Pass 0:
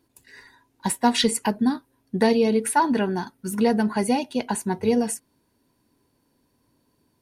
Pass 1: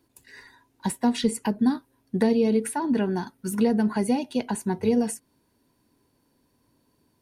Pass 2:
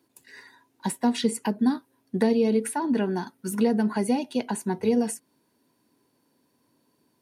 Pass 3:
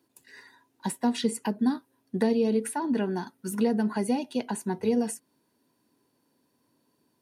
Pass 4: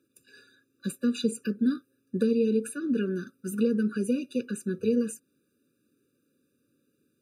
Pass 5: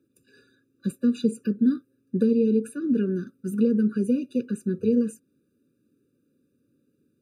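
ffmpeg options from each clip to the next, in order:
-filter_complex "[0:a]acrossover=split=460[a][b];[b]acompressor=threshold=-31dB:ratio=4[c];[a][c]amix=inputs=2:normalize=0"
-af "highpass=160"
-af "bandreject=f=2.2k:w=27,volume=-2.5dB"
-af "afftfilt=real='re*eq(mod(floor(b*sr/1024/580),2),0)':imag='im*eq(mod(floor(b*sr/1024/580),2),0)':win_size=1024:overlap=0.75"
-af "tiltshelf=f=630:g=6"

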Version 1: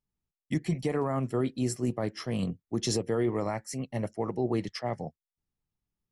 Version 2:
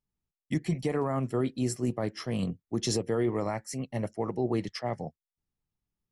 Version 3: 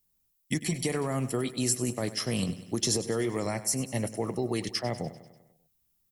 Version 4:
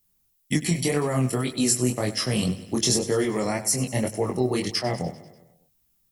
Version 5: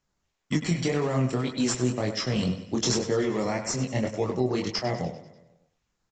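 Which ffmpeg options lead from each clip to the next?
-af anull
-filter_complex "[0:a]acrossover=split=660|1600[a][b][c];[a]acompressor=threshold=-31dB:ratio=4[d];[b]acompressor=threshold=-49dB:ratio=4[e];[c]acompressor=threshold=-41dB:ratio=4[f];[d][e][f]amix=inputs=3:normalize=0,aemphasis=mode=production:type=75fm,aecho=1:1:98|196|294|392|490|588:0.178|0.101|0.0578|0.0329|0.0188|0.0107,volume=4.5dB"
-af "flanger=delay=19.5:depth=4.6:speed=1.9,volume=8.5dB"
-filter_complex "[0:a]asplit=2[a][b];[b]acrusher=samples=10:mix=1:aa=0.000001:lfo=1:lforange=10:lforate=2.2,volume=-11dB[c];[a][c]amix=inputs=2:normalize=0,asplit=2[d][e];[e]adelay=100,highpass=300,lowpass=3.4k,asoftclip=type=hard:threshold=-17dB,volume=-9dB[f];[d][f]amix=inputs=2:normalize=0,aresample=16000,aresample=44100,volume=-4dB"

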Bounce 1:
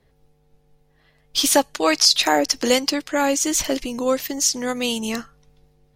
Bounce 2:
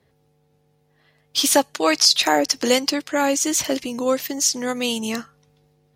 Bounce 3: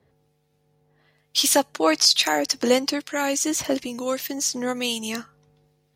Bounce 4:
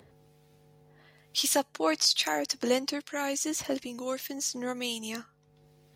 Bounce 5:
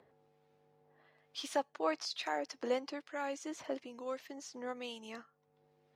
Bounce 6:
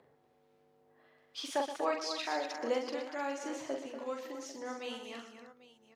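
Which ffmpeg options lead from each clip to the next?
-af "highpass=f=75:w=0.5412,highpass=f=75:w=1.3066"
-filter_complex "[0:a]acrossover=split=1600[a][b];[a]aeval=exprs='val(0)*(1-0.5/2+0.5/2*cos(2*PI*1.1*n/s))':c=same[c];[b]aeval=exprs='val(0)*(1-0.5/2-0.5/2*cos(2*PI*1.1*n/s))':c=same[d];[c][d]amix=inputs=2:normalize=0"
-af "acompressor=mode=upward:threshold=-39dB:ratio=2.5,volume=-7.5dB"
-af "bandpass=f=820:t=q:w=0.61:csg=0,volume=-5dB"
-af "aecho=1:1:43|124|153|240|309|796:0.596|0.282|0.133|0.376|0.237|0.15"

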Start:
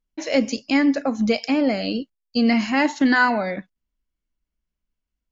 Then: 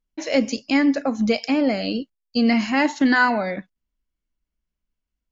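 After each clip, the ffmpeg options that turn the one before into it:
-af anull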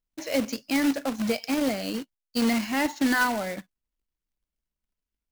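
-af "acrusher=bits=2:mode=log:mix=0:aa=0.000001,volume=-6.5dB"

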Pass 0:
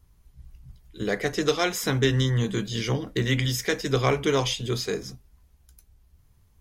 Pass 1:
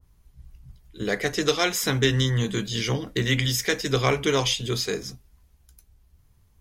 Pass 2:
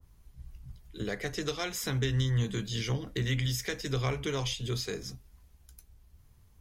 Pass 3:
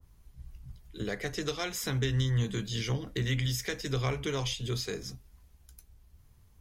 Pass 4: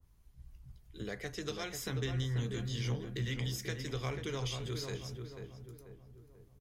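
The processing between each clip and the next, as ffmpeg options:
-af "adynamicequalizer=threshold=0.01:dfrequency=1600:dqfactor=0.7:tfrequency=1600:tqfactor=0.7:attack=5:release=100:ratio=0.375:range=2:mode=boostabove:tftype=highshelf"
-filter_complex "[0:a]acrossover=split=120[a][b];[b]acompressor=threshold=-40dB:ratio=2[c];[a][c]amix=inputs=2:normalize=0"
-af anull
-filter_complex "[0:a]asplit=2[a][b];[b]adelay=489,lowpass=f=1.4k:p=1,volume=-5dB,asplit=2[c][d];[d]adelay=489,lowpass=f=1.4k:p=1,volume=0.48,asplit=2[e][f];[f]adelay=489,lowpass=f=1.4k:p=1,volume=0.48,asplit=2[g][h];[h]adelay=489,lowpass=f=1.4k:p=1,volume=0.48,asplit=2[i][j];[j]adelay=489,lowpass=f=1.4k:p=1,volume=0.48,asplit=2[k][l];[l]adelay=489,lowpass=f=1.4k:p=1,volume=0.48[m];[a][c][e][g][i][k][m]amix=inputs=7:normalize=0,volume=-6.5dB"

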